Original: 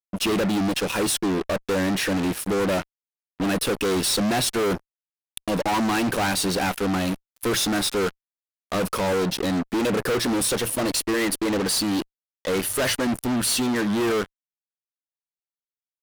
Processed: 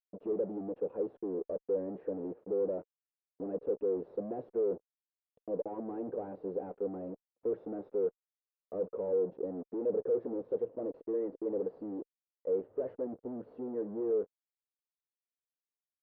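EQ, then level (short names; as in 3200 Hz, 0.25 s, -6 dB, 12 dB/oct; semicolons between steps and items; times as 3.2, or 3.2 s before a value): ladder low-pass 520 Hz, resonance 65%; tilt +4.5 dB/oct; 0.0 dB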